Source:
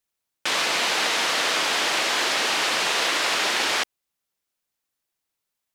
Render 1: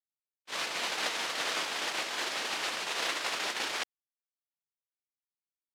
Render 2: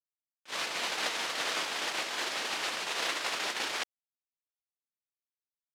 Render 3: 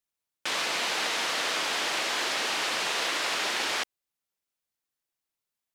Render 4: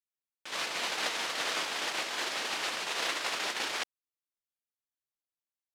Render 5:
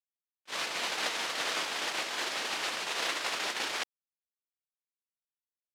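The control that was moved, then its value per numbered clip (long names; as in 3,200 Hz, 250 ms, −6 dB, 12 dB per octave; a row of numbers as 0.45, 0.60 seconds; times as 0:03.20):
noise gate, range: −60, −33, −6, −19, −45 decibels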